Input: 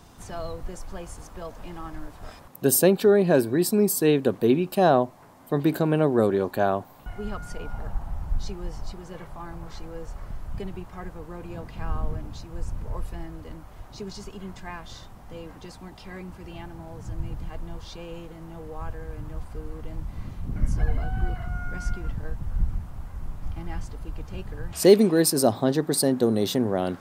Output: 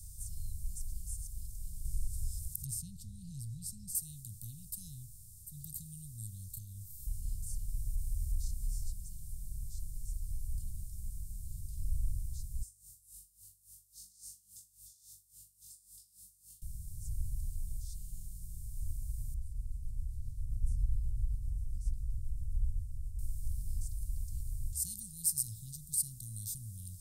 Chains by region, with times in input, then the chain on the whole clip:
0:01.85–0:03.95: treble cut that deepens with the level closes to 2,700 Hz, closed at −17.5 dBFS + upward compression, threshold −34 dBFS + bass and treble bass +9 dB, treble +7 dB
0:06.50–0:08.84: double-tracking delay 30 ms −5.5 dB + downward compressor, threshold −23 dBFS + one half of a high-frequency compander encoder only
0:12.62–0:16.62: high-pass filter 790 Hz + flutter between parallel walls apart 3.5 metres, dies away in 0.61 s + tremolo with a sine in dB 3.6 Hz, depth 28 dB
0:19.34–0:23.19: low-pass filter 1,100 Hz 6 dB per octave + amplitude tremolo 7.5 Hz, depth 40%
whole clip: compressor on every frequency bin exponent 0.6; inverse Chebyshev band-stop filter 360–2,200 Hz, stop band 70 dB; parametric band 2,800 Hz +11 dB 1.7 octaves; level −8 dB

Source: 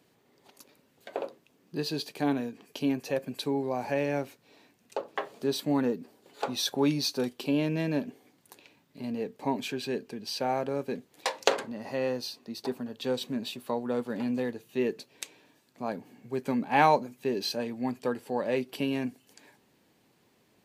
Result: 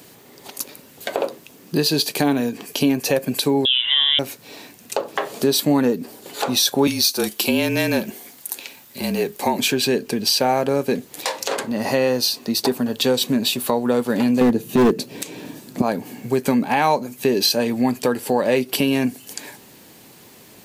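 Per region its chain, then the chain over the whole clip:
0:03.65–0:04.19: voice inversion scrambler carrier 3,700 Hz + Butterworth band-reject 1,300 Hz, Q 3.1
0:06.87–0:09.59: high-pass filter 520 Hz 6 dB per octave + high-shelf EQ 8,000 Hz +6.5 dB + frequency shifter −33 Hz
0:14.41–0:15.82: parametric band 200 Hz +14 dB 2.7 octaves + hard clipping −19 dBFS
whole clip: high-shelf EQ 6,000 Hz +11.5 dB; downward compressor 2.5 to 1, threshold −36 dBFS; boost into a limiter +23.5 dB; level −5.5 dB

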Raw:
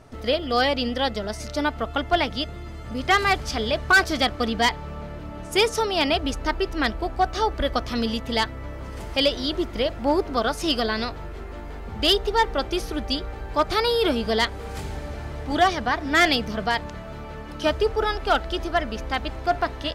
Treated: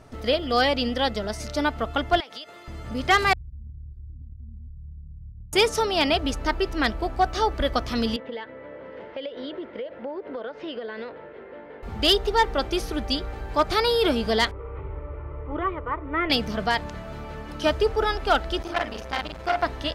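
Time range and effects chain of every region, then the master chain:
0:02.20–0:02.68: high-pass filter 520 Hz + downward compressor 20 to 1, threshold −33 dBFS
0:03.33–0:05.53: inverse Chebyshev low-pass filter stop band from 530 Hz, stop band 70 dB + downward compressor 3 to 1, threshold −37 dBFS
0:08.16–0:11.83: loudspeaker in its box 310–2,700 Hz, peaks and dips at 350 Hz −4 dB, 510 Hz +9 dB, 730 Hz −8 dB, 1,200 Hz −9 dB, 2,500 Hz −6 dB + downward compressor 12 to 1, threshold −29 dBFS
0:14.51–0:16.30: Chebyshev low-pass filter 1,700 Hz, order 3 + phaser with its sweep stopped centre 1,100 Hz, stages 8
0:18.62–0:19.63: low-shelf EQ 200 Hz −7 dB + double-tracking delay 44 ms −3 dB + saturating transformer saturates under 1,300 Hz
whole clip: no processing

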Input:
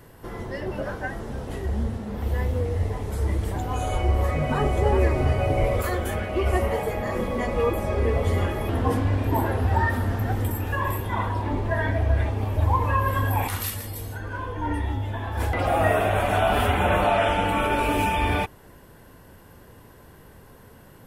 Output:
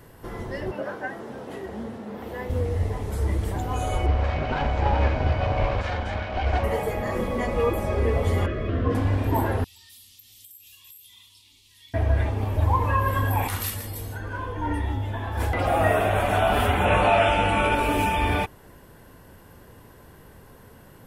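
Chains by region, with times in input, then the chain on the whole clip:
0:00.71–0:02.50: high-pass filter 220 Hz + parametric band 9,300 Hz −6.5 dB 2.2 octaves
0:04.06–0:06.64: lower of the sound and its delayed copy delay 1.3 ms + low-pass filter 5,300 Hz 24 dB per octave + parametric band 150 Hz −6.5 dB 0.33 octaves
0:08.46–0:08.95: Butterworth band-reject 850 Hz, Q 2.4 + high-frequency loss of the air 190 metres
0:09.64–0:11.94: inverse Chebyshev high-pass filter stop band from 1,700 Hz + downward compressor, threshold −44 dBFS
0:16.85–0:17.75: Butterworth low-pass 11,000 Hz 96 dB per octave + parametric band 2,600 Hz +5.5 dB 0.25 octaves + double-tracking delay 19 ms −6 dB
whole clip: no processing

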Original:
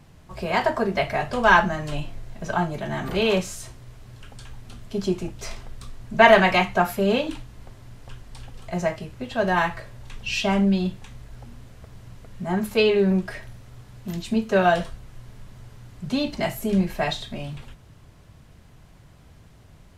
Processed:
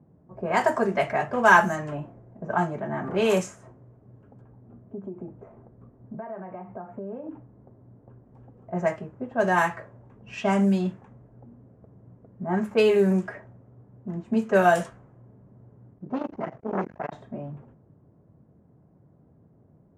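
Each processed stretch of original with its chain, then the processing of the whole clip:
0:04.41–0:08.26: downward compressor 16 to 1, threshold −30 dBFS + moving average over 9 samples
0:15.93–0:17.13: variable-slope delta modulation 32 kbit/s + saturating transformer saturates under 930 Hz
whole clip: high-pass filter 160 Hz 12 dB per octave; low-pass that shuts in the quiet parts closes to 460 Hz, open at −16 dBFS; drawn EQ curve 1,700 Hz 0 dB, 4,100 Hz −10 dB, 6,900 Hz +9 dB

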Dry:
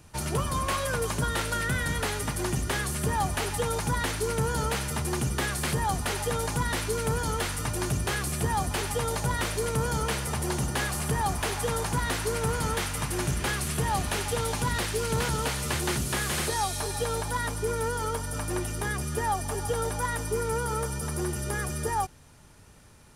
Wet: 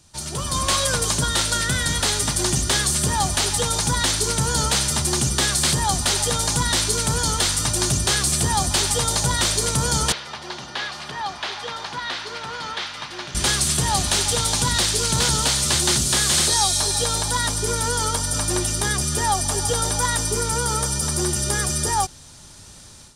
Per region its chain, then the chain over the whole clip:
0:10.12–0:13.35: high-pass filter 1,300 Hz 6 dB per octave + high-frequency loss of the air 300 metres
whole clip: flat-topped bell 5,500 Hz +11 dB; notch filter 450 Hz, Q 12; automatic gain control gain up to 11.5 dB; level −4.5 dB

